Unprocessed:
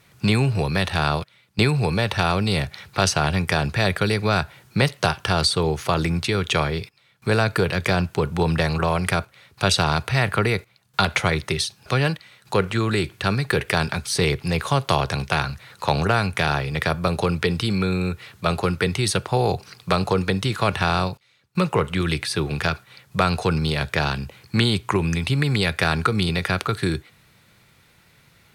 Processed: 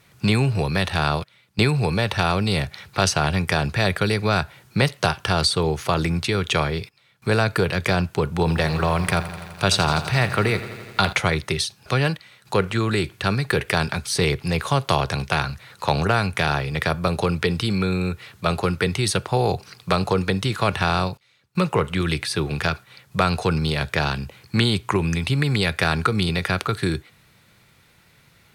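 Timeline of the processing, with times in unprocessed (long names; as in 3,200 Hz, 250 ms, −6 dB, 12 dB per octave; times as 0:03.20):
0:08.38–0:11.13: feedback echo at a low word length 84 ms, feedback 80%, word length 7 bits, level −14 dB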